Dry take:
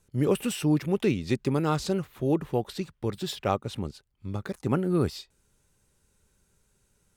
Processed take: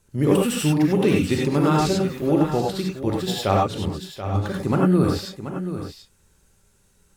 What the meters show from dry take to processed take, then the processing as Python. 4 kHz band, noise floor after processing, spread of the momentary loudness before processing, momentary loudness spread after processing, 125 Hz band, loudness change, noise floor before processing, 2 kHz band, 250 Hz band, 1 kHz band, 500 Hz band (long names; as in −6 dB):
+7.5 dB, −61 dBFS, 11 LU, 11 LU, +7.0 dB, +6.5 dB, −71 dBFS, +8.0 dB, +7.5 dB, +9.0 dB, +6.5 dB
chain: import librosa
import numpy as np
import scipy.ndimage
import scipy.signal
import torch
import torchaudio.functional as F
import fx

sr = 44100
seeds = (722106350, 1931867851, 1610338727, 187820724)

y = x + 10.0 ** (-11.0 / 20.0) * np.pad(x, (int(732 * sr / 1000.0), 0))[:len(x)]
y = fx.rev_gated(y, sr, seeds[0], gate_ms=120, shape='rising', drr_db=-2.0)
y = F.gain(torch.from_numpy(y), 3.5).numpy()